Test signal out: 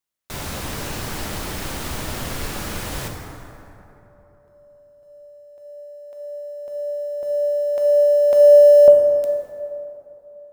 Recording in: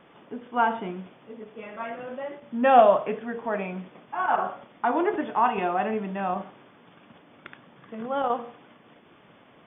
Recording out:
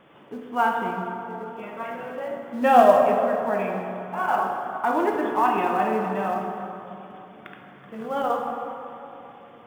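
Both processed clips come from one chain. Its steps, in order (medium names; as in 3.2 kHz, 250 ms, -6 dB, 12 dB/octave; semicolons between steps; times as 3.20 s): in parallel at -8 dB: short-mantissa float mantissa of 2-bit; on the sum: plate-style reverb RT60 3.2 s, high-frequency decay 0.45×, DRR 1.5 dB; trim -3 dB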